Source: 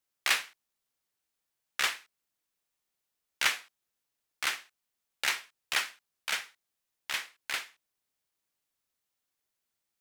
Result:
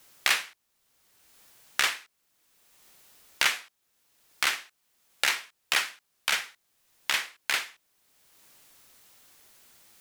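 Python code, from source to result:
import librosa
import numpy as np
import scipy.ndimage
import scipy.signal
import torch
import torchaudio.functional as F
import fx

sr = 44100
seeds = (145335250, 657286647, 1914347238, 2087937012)

y = fx.band_squash(x, sr, depth_pct=70)
y = y * librosa.db_to_amplitude(6.0)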